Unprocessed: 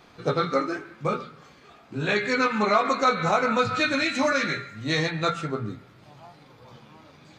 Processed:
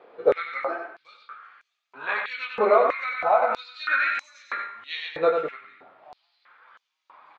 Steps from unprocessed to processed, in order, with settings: 2.78–3.5 compressor 3:1, threshold -21 dBFS, peak gain reduction 4.5 dB; air absorption 490 m; tapped delay 94/190 ms -5.5/-19 dB; stepped high-pass 3.1 Hz 480–6400 Hz

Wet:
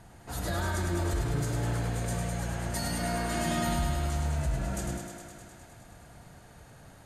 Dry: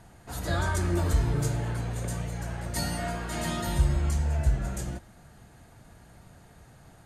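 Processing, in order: limiter -23 dBFS, peak gain reduction 10.5 dB; on a send: thinning echo 0.103 s, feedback 78%, high-pass 170 Hz, level -5 dB

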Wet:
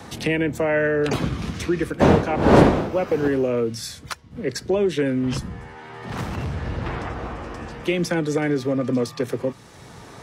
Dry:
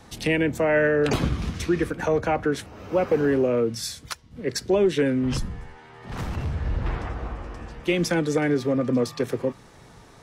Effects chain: 2–3.27 wind noise 480 Hz -18 dBFS; HPF 66 Hz; three-band squash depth 40%

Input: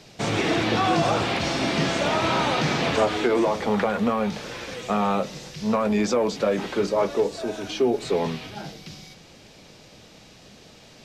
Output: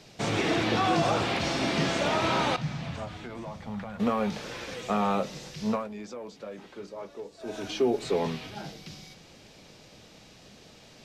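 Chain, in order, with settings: 2.56–4 EQ curve 150 Hz 0 dB, 420 Hz -22 dB, 610 Hz -13 dB; 5.68–7.58 dip -14.5 dB, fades 0.20 s; gain -3.5 dB

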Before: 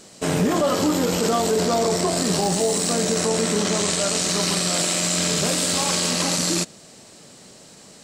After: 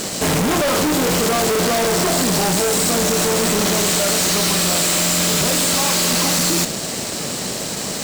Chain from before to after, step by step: fuzz box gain 42 dB, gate -51 dBFS; modulation noise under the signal 17 dB; gain -3.5 dB

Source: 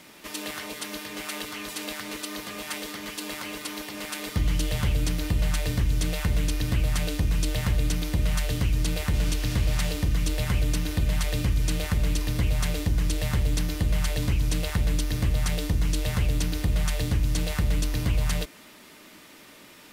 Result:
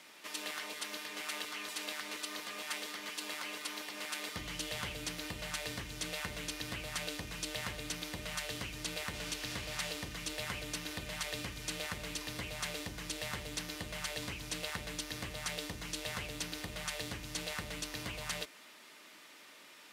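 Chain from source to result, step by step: HPF 790 Hz 6 dB/oct; high shelf 12000 Hz -10.5 dB; gain -4 dB

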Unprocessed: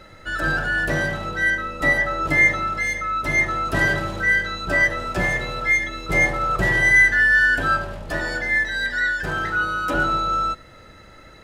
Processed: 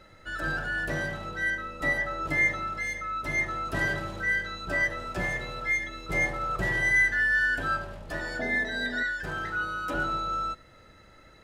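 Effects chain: 8.39–9.03 small resonant body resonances 250/410/650/3700 Hz, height 16 dB; gain -8.5 dB

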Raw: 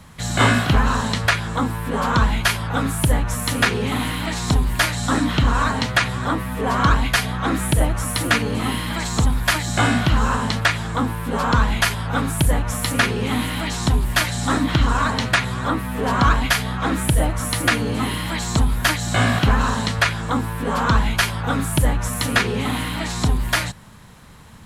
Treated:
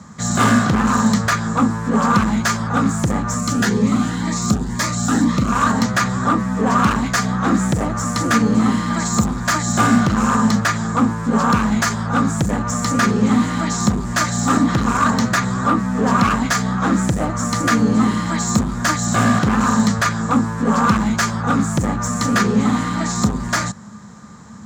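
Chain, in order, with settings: median filter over 3 samples; EQ curve 1700 Hz 0 dB, 2800 Hz -12 dB, 7200 Hz +9 dB, 10000 Hz -16 dB; hard clip -16 dBFS, distortion -11 dB; HPF 94 Hz 12 dB/oct; small resonant body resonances 210/1200 Hz, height 13 dB, ringing for 90 ms; 3.39–5.52 cascading phaser rising 2 Hz; gain +2.5 dB

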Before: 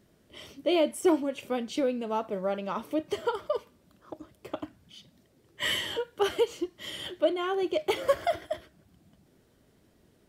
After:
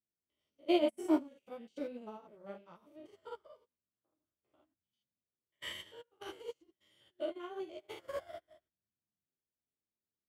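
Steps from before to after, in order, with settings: stepped spectrum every 0.1 s; flange 1 Hz, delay 8.2 ms, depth 6.5 ms, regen -25%; upward expander 2.5:1, over -50 dBFS; gain +2 dB

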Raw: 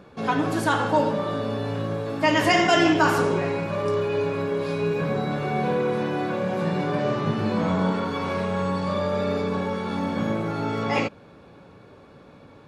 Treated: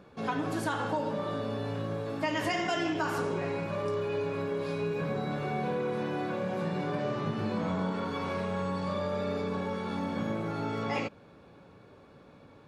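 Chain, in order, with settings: compressor, threshold -21 dBFS, peak gain reduction 7.5 dB; gain -6 dB

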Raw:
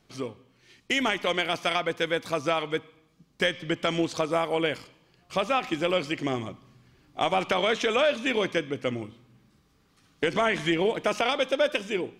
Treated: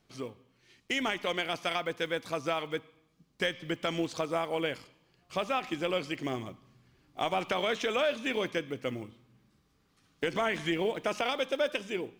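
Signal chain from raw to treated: block floating point 7-bit; gain -5.5 dB

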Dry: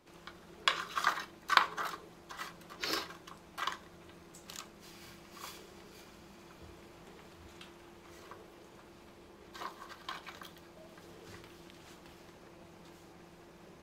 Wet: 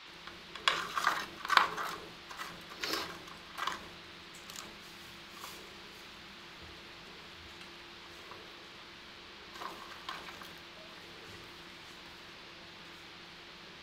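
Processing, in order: reverse echo 0.121 s -19 dB; transient shaper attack +2 dB, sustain +6 dB; band noise 890–4400 Hz -51 dBFS; gain -1.5 dB

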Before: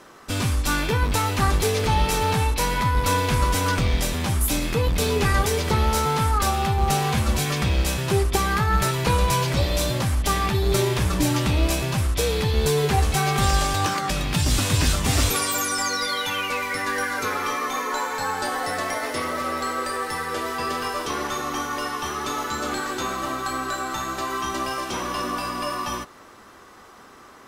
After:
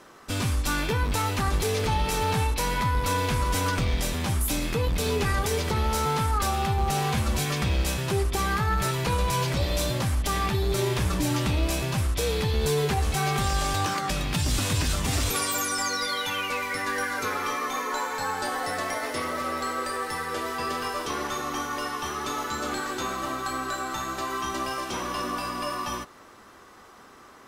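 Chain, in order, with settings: limiter -13 dBFS, peak gain reduction 5 dB; gain -3 dB

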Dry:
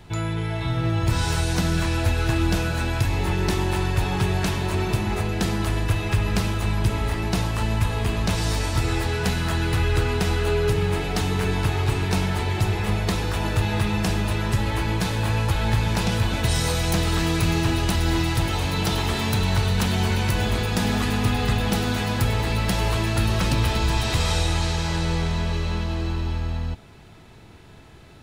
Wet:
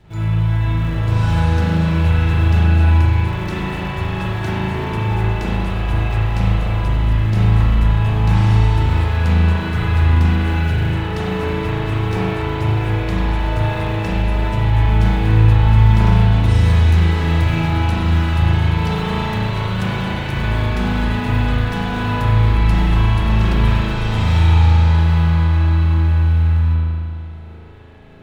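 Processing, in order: high shelf 7800 Hz -11.5 dB; in parallel at -8 dB: decimation with a swept rate 34×, swing 160% 1.3 Hz; on the sum: spring tank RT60 2.1 s, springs 37 ms, chirp 65 ms, DRR -9.5 dB; gain -7 dB

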